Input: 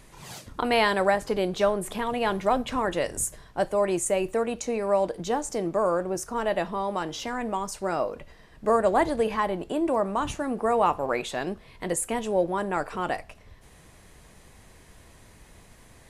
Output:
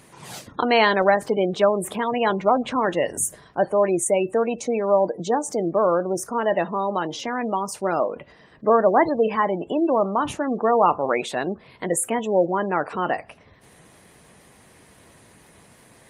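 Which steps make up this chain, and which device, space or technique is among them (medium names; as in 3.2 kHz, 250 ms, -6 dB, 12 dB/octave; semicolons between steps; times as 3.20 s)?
noise-suppressed video call (high-pass 130 Hz 12 dB/octave; spectral gate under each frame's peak -25 dB strong; trim +5 dB; Opus 32 kbps 48 kHz)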